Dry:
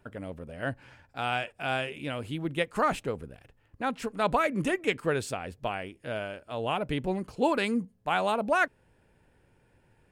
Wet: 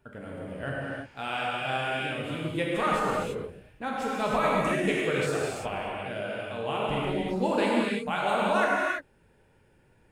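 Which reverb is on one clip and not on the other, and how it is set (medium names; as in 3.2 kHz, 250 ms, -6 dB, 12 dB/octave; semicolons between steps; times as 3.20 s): gated-style reverb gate 370 ms flat, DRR -5.5 dB; trim -4.5 dB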